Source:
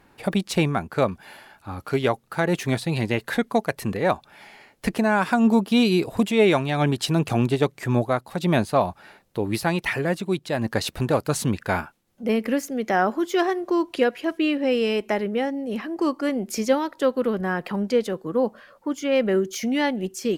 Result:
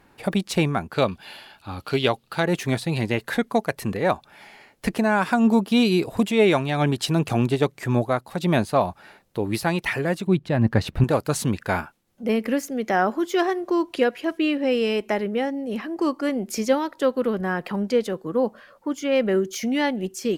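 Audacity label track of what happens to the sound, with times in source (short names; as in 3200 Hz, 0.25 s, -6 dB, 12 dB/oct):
0.930000	2.430000	band shelf 3500 Hz +8.5 dB 1.1 oct
10.270000	11.040000	tone controls bass +10 dB, treble -11 dB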